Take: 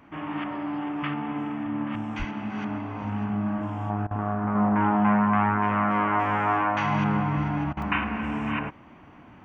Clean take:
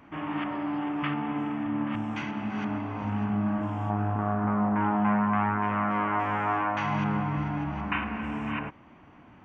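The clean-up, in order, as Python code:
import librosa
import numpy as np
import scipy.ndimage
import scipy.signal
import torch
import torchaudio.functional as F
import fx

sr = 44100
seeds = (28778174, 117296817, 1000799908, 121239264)

y = fx.fix_deplosive(x, sr, at_s=(2.18,))
y = fx.fix_interpolate(y, sr, at_s=(7.82,), length_ms=2.2)
y = fx.fix_interpolate(y, sr, at_s=(4.07, 7.73), length_ms=38.0)
y = fx.fix_level(y, sr, at_s=4.55, step_db=-3.5)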